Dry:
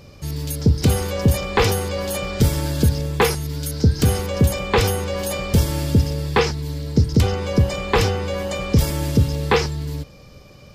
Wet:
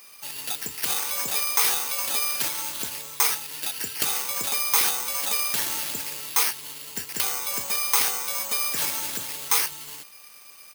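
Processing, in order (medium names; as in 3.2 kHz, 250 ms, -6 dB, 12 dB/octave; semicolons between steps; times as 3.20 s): 2.48–3.32 s: median filter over 5 samples; high-pass 890 Hz 12 dB/octave; treble shelf 12 kHz -10.5 dB; comb 0.9 ms, depth 56%; careless resampling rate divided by 6×, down none, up zero stuff; loudness maximiser -1.5 dB; trim -2 dB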